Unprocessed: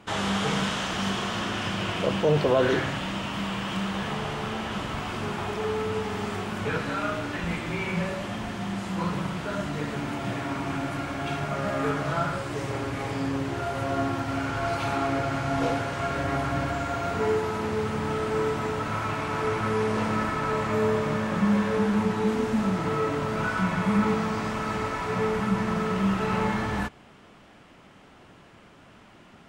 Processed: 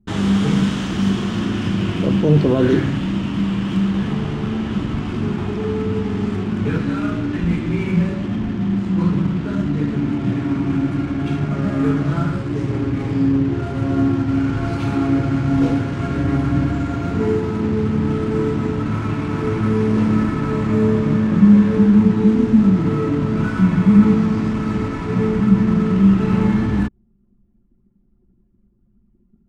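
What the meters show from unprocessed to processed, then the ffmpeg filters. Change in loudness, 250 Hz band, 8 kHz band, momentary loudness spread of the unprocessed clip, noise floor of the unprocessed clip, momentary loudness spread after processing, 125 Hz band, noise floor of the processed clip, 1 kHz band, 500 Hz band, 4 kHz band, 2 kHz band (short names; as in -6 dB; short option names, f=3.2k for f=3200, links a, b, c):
+9.0 dB, +13.0 dB, n/a, 7 LU, -52 dBFS, 8 LU, +12.0 dB, -58 dBFS, -1.5 dB, +4.0 dB, -0.5 dB, -0.5 dB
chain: -af "anlmdn=1.58,lowshelf=f=420:t=q:w=1.5:g=11"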